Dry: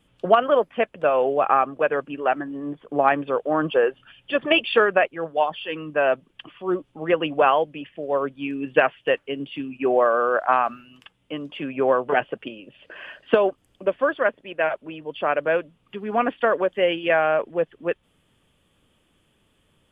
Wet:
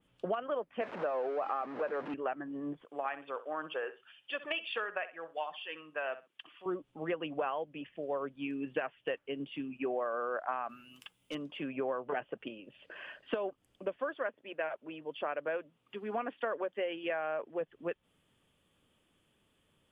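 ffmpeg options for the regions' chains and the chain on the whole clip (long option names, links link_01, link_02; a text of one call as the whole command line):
ffmpeg -i in.wav -filter_complex "[0:a]asettb=1/sr,asplit=3[link_01][link_02][link_03];[link_01]atrim=end=0.814[link_04];[link_02]atrim=start=0.81:end=2.14,asetpts=PTS-STARTPTS,afade=type=in:duration=0.004:curve=qsin,afade=type=out:start_time=1.326:duration=0.004:curve=qsin,aeval=exprs='val(0)+0.5*0.075*sgn(val(0))':channel_layout=same,highpass=270,lowpass=2000[link_05];[link_03]atrim=start=2.136[link_06];[link_04][link_05]acrossfade=duration=0.004:curve1=hsin:curve2=qsin[link_07];[link_07][link_06]acrossfade=duration=0.004:curve1=qsin:curve2=hsin,asettb=1/sr,asplit=3[link_08][link_09][link_10];[link_08]atrim=end=2.854[link_11];[link_09]atrim=start=2.85:end=6.66,asetpts=PTS-STARTPTS,afade=type=in:duration=0.004:curve=qsin,afade=type=out:start_time=3.806:duration=0.004:curve=qsin,highpass=frequency=1300:poles=1,aecho=1:1:64|128:0.168|0.0285,atrim=end_sample=168021[link_12];[link_10]atrim=start=6.656[link_13];[link_11][link_12]acrossfade=duration=0.004:curve1=hsin:curve2=qsin[link_14];[link_14][link_13]acrossfade=duration=0.004:curve1=qsin:curve2=hsin,asettb=1/sr,asplit=3[link_15][link_16][link_17];[link_15]atrim=end=10.694[link_18];[link_16]atrim=start=10.69:end=11.35,asetpts=PTS-STARTPTS,afade=type=in:duration=0.004:curve=qsin,afade=type=out:start_time=0.656:duration=0.004:curve=qsin,aemphasis=mode=production:type=75kf,bandreject=frequency=1800:width=15,asoftclip=type=hard:threshold=-26.5dB[link_19];[link_17]atrim=start=11.346[link_20];[link_18][link_19]acrossfade=duration=0.004:curve1=hsin:curve2=qsin[link_21];[link_21][link_20]acrossfade=duration=0.004:curve1=qsin:curve2=hsin,asettb=1/sr,asplit=3[link_22][link_23][link_24];[link_22]atrim=end=13.974[link_25];[link_23]atrim=start=13.97:end=17.61,asetpts=PTS-STARTPTS,afade=type=in:duration=0.004:curve=qsin,afade=type=out:start_time=3.636:duration=0.004:curve=qsin,highpass=frequency=140:poles=1,bandreject=frequency=180:width=5.1[link_26];[link_24]atrim=start=17.606[link_27];[link_25][link_26]acrossfade=duration=0.004:curve1=hsin:curve2=qsin[link_28];[link_28][link_27]acrossfade=duration=0.004:curve1=qsin:curve2=hsin,lowshelf=frequency=79:gain=-6.5,acompressor=threshold=-25dB:ratio=4,adynamicequalizer=threshold=0.00501:dfrequency=2800:dqfactor=0.7:tfrequency=2800:tqfactor=0.7:attack=5:release=100:ratio=0.375:range=3:mode=cutabove:tftype=highshelf,volume=-7.5dB" out.wav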